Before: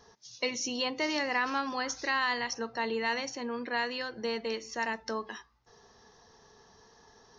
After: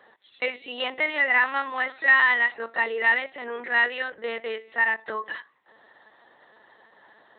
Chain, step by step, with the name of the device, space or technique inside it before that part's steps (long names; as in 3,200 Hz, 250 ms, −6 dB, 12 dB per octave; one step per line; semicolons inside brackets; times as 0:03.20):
talking toy (linear-prediction vocoder at 8 kHz pitch kept; high-pass filter 400 Hz 12 dB per octave; parametric band 1,900 Hz +11 dB 0.27 octaves)
level +5.5 dB